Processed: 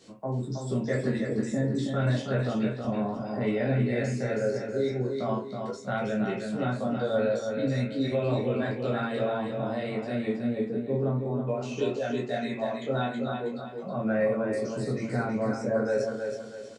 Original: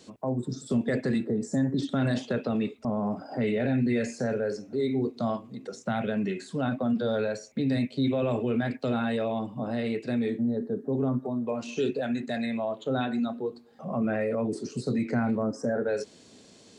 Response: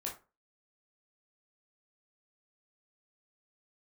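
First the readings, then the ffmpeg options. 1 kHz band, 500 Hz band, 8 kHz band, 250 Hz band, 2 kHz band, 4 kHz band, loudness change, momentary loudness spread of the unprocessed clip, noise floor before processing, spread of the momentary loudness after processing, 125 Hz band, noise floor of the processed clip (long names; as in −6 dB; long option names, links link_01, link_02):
+1.0 dB, +1.5 dB, can't be measured, −2.5 dB, +1.0 dB, −0.5 dB, 0.0 dB, 5 LU, −54 dBFS, 5 LU, +2.5 dB, −39 dBFS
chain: -filter_complex "[0:a]aecho=1:1:321|642|963|1284:0.531|0.196|0.0727|0.0269[link_01];[1:a]atrim=start_sample=2205,asetrate=57330,aresample=44100[link_02];[link_01][link_02]afir=irnorm=-1:irlink=0,volume=1.5dB"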